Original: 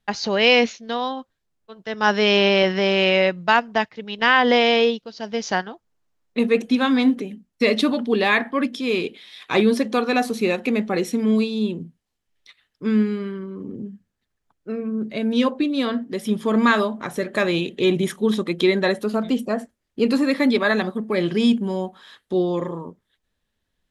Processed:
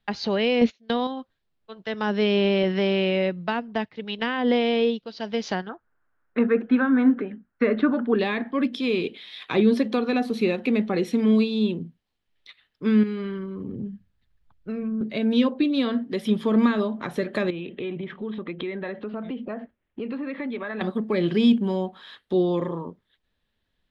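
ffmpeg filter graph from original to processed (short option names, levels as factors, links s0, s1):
-filter_complex "[0:a]asettb=1/sr,asplit=3[s0][s1][s2];[s0]atrim=end=0.614[s3];[s1]atrim=start=0.61:end=1.07,asetpts=PTS-STARTPTS,afade=t=in:d=0.004:c=qsin,afade=t=out:st=0.456:d=0.004:c=qsin,agate=range=0.0891:threshold=0.0251:ratio=16:release=100:detection=peak,acontrast=42[s4];[s2]atrim=start=1.066[s5];[s3][s4]acrossfade=d=0.004:c1=hsin:c2=qsin[s6];[s6][s5]acrossfade=d=0.004:c1=qsin:c2=hsin,asettb=1/sr,asplit=3[s7][s8][s9];[s7]atrim=end=5.694[s10];[s8]atrim=start=5.69:end=8.19,asetpts=PTS-STARTPTS,afade=t=in:d=0.004:c=qsin,afade=t=out:st=2.496:d=0.004:c=qsin,lowpass=f=1500:t=q:w=5.3,equalizer=f=170:w=4.5:g=-7.5[s11];[s9]atrim=start=8.186[s12];[s10][s11]acrossfade=d=0.004:c1=hsin:c2=qsin[s13];[s13][s12]acrossfade=d=0.004:c1=qsin:c2=hsin,asettb=1/sr,asplit=3[s14][s15][s16];[s14]atrim=end=13.034[s17];[s15]atrim=start=13.03:end=15.01,asetpts=PTS-STARTPTS,afade=t=in:d=0.004:c=qsin,afade=t=out:st=1.976:d=0.004:c=qsin,asubboost=boost=10.5:cutoff=140,acompressor=threshold=0.0501:ratio=3:attack=3.2:release=140:knee=1:detection=peak[s18];[s16]atrim=start=15.006[s19];[s17][s18]acrossfade=d=0.004:c1=hsin:c2=qsin[s20];[s20][s19]acrossfade=d=0.004:c1=qsin:c2=hsin,asettb=1/sr,asplit=3[s21][s22][s23];[s21]atrim=end=17.504[s24];[s22]atrim=start=17.5:end=20.81,asetpts=PTS-STARTPTS,afade=t=in:d=0.004:c=qsin,afade=t=out:st=3.306:d=0.004:c=qsin,lowpass=f=2800:w=0.5412,lowpass=f=2800:w=1.3066,acompressor=threshold=0.0316:ratio=4:attack=3.2:release=140:knee=1:detection=peak[s25];[s23]atrim=start=20.806[s26];[s24][s25]acrossfade=d=0.004:c1=hsin:c2=qsin[s27];[s27][s26]acrossfade=d=0.004:c1=qsin:c2=hsin,highshelf=f=5100:t=q:w=1.5:g=-8,acrossover=split=450[s28][s29];[s29]acompressor=threshold=0.0355:ratio=4[s30];[s28][s30]amix=inputs=2:normalize=0"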